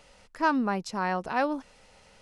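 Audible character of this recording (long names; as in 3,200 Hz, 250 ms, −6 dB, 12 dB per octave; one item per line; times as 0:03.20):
background noise floor −58 dBFS
spectral slope −4.0 dB per octave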